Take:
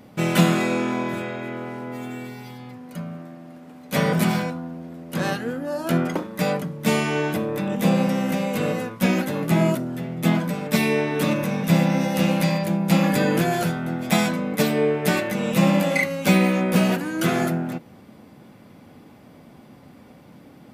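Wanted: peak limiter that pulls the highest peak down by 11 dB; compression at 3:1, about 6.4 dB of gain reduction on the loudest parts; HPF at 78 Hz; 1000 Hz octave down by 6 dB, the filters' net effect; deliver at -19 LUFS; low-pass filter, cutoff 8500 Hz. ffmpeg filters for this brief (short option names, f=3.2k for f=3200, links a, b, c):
-af "highpass=78,lowpass=8.5k,equalizer=f=1k:t=o:g=-8.5,acompressor=threshold=-22dB:ratio=3,volume=11.5dB,alimiter=limit=-10dB:level=0:latency=1"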